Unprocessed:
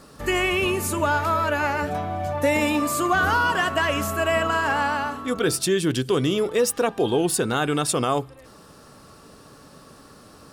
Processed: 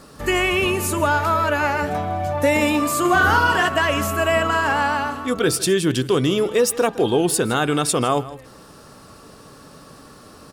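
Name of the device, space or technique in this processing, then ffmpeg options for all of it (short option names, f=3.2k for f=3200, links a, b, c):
ducked delay: -filter_complex "[0:a]asplit=3[a][b][c];[b]adelay=160,volume=-8dB[d];[c]apad=whole_len=471298[e];[d][e]sidechaincompress=threshold=-31dB:ratio=4:attack=16:release=440[f];[a][f]amix=inputs=2:normalize=0,asettb=1/sr,asplit=3[g][h][i];[g]atrim=end=3.004[j];[h]atrim=start=3:end=3.68,asetpts=PTS-STARTPTS,afade=t=in:d=0.004:c=qsin,afade=t=out:st=0.676:d=0.004:c=qsin,asplit=2[k][l];[l]adelay=48,volume=-4.5dB[m];[k][m]amix=inputs=2:normalize=0,atrim=end_sample=29988[n];[i]atrim=start=3.676[o];[j][n]acrossfade=d=0.004:c1=hsin:c2=qsin[p];[p][o]acrossfade=d=0.004:c1=qsin:c2=hsin,volume=3dB"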